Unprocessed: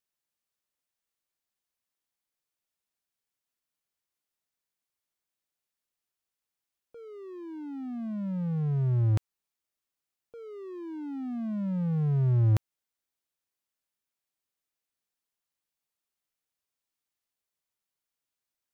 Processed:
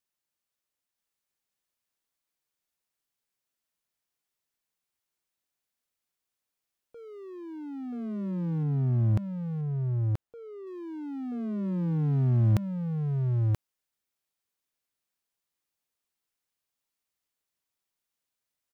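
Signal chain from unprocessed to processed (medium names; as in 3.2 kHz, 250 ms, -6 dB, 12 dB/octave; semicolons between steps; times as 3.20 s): 8.63–10.67 s: treble shelf 2.1 kHz -8.5 dB; delay 980 ms -3 dB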